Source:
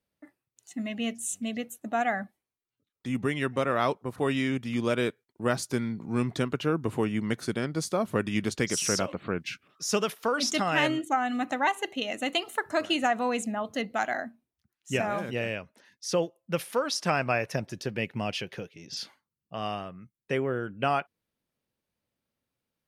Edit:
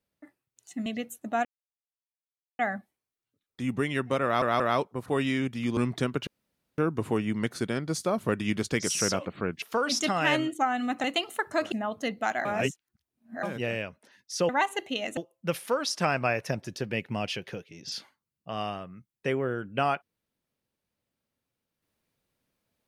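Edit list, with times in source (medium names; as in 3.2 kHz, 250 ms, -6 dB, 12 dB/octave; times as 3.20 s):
0.86–1.46 s: delete
2.05 s: insert silence 1.14 s
3.70 s: stutter 0.18 s, 3 plays
4.87–6.15 s: delete
6.65 s: insert room tone 0.51 s
9.49–10.13 s: delete
11.55–12.23 s: move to 16.22 s
12.91–13.45 s: delete
14.18–15.16 s: reverse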